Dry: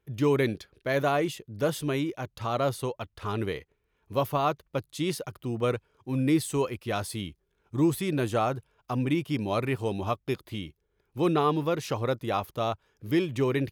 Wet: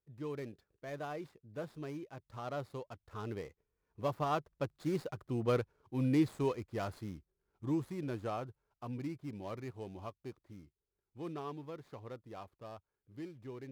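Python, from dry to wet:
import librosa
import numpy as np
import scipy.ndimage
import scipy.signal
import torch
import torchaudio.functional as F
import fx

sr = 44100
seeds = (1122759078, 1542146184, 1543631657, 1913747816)

y = scipy.ndimage.median_filter(x, 15, mode='constant')
y = fx.doppler_pass(y, sr, speed_mps=11, closest_m=13.0, pass_at_s=5.51)
y = y * 10.0 ** (-4.0 / 20.0)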